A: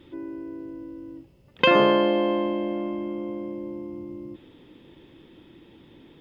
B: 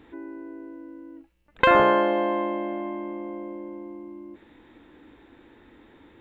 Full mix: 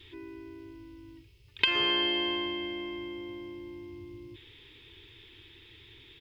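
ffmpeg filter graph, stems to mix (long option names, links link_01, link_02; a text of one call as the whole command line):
ffmpeg -i stem1.wav -i stem2.wav -filter_complex "[0:a]volume=2dB[link_01];[1:a]highpass=frequency=350:poles=1,adelay=3.9,volume=2dB[link_02];[link_01][link_02]amix=inputs=2:normalize=0,firequalizer=gain_entry='entry(110,0);entry(160,-21);entry(270,-21);entry(400,-7);entry(580,-25);entry(980,-13);entry(1400,-12);entry(2300,3);entry(3900,6);entry(7100,-1)':delay=0.05:min_phase=1,acompressor=threshold=-23dB:ratio=6" out.wav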